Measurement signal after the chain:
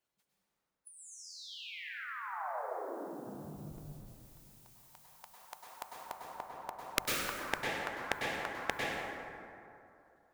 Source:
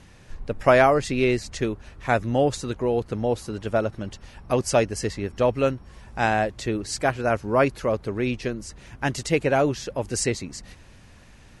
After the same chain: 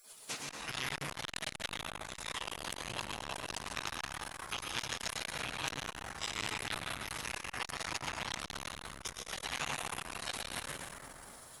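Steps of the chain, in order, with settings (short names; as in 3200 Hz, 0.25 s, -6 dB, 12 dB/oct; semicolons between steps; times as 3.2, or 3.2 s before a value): tilt +3 dB/oct; reverse; compressor 12:1, threshold -33 dBFS; reverse; notches 50/100/150/200 Hz; on a send: darkening echo 70 ms, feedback 18%, low-pass 810 Hz, level -21.5 dB; on the sum: spectral gate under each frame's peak -20 dB weak; low shelf 110 Hz +4.5 dB; plate-style reverb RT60 2.8 s, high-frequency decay 0.4×, pre-delay 90 ms, DRR -2.5 dB; core saturation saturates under 3200 Hz; gain +15 dB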